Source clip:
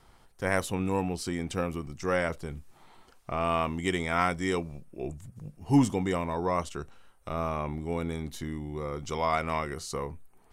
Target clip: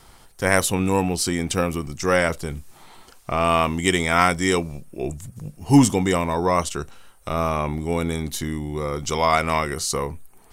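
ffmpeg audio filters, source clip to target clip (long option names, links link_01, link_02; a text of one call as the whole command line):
ffmpeg -i in.wav -af "highshelf=frequency=3900:gain=9,volume=8dB" out.wav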